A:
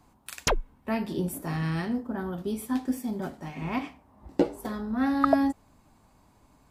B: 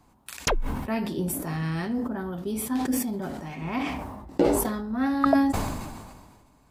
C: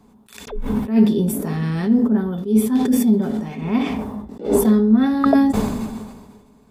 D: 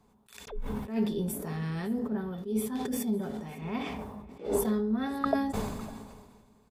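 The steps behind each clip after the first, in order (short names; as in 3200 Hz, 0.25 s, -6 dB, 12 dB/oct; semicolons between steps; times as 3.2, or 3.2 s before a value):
sustainer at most 36 dB/s
small resonant body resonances 220/420/3500 Hz, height 17 dB, ringing for 85 ms; attack slew limiter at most 160 dB/s; gain +2 dB
bell 250 Hz -8 dB 0.82 oct; echo 0.555 s -22.5 dB; gain -9 dB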